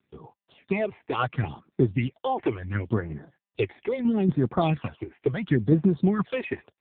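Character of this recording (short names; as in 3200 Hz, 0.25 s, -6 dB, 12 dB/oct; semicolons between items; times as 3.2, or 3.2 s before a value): a quantiser's noise floor 12-bit, dither none; phasing stages 8, 0.73 Hz, lowest notch 160–3100 Hz; tremolo saw down 4.2 Hz, depth 45%; AMR-NB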